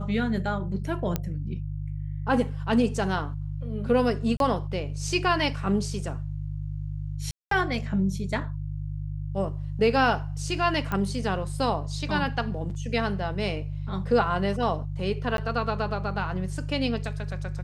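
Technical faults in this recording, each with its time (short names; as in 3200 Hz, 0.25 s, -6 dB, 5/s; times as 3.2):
hum 50 Hz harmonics 3 -32 dBFS
1.16 pop -12 dBFS
4.37–4.4 gap 32 ms
7.31–7.51 gap 0.203 s
10.92 pop -16 dBFS
15.37–15.38 gap 12 ms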